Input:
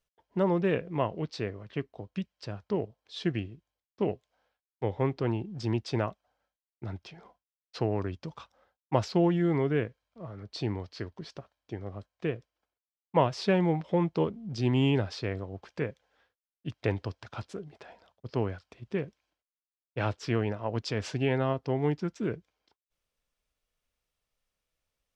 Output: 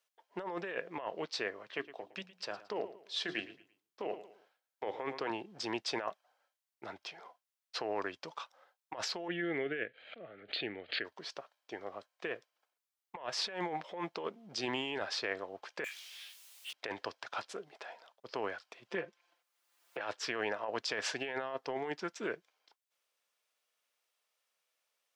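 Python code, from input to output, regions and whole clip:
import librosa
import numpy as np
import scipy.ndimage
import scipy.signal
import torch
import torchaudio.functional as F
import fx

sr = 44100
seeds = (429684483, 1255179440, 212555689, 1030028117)

y = fx.chain(x, sr, fx.highpass(hz=110.0, slope=12),
    fx.hum_notches(base_hz=60, count=6),
    fx.echo_feedback(ms=112, feedback_pct=34, wet_db=-17), at=(1.67, 5.3))
y = fx.chain(y, sr, fx.lowpass(hz=4000.0, slope=24),
    fx.fixed_phaser(hz=2400.0, stages=4),
    fx.pre_swell(db_per_s=79.0), at=(9.28, 11.05))
y = fx.chain(y, sr, fx.steep_highpass(hz=2400.0, slope=36),
    fx.power_curve(exponent=0.35),
    fx.detune_double(cents=22), at=(15.84, 16.73))
y = fx.chain(y, sr, fx.high_shelf(hz=3700.0, db=-7.0),
    fx.comb(ms=5.8, depth=0.79),
    fx.band_squash(depth_pct=100), at=(18.88, 20.01))
y = scipy.signal.sosfilt(scipy.signal.butter(2, 610.0, 'highpass', fs=sr, output='sos'), y)
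y = fx.dynamic_eq(y, sr, hz=1700.0, q=6.5, threshold_db=-56.0, ratio=4.0, max_db=6)
y = fx.over_compress(y, sr, threshold_db=-38.0, ratio=-1.0)
y = F.gain(torch.from_numpy(y), 1.0).numpy()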